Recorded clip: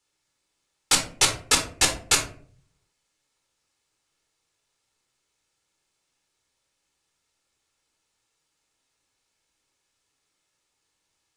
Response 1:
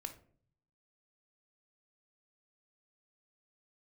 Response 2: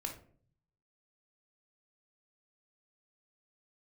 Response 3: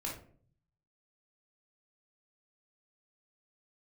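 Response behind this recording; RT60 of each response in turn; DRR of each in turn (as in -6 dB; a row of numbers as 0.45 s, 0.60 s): 2; 0.50 s, 0.50 s, 0.50 s; 7.0 dB, 2.5 dB, -3.0 dB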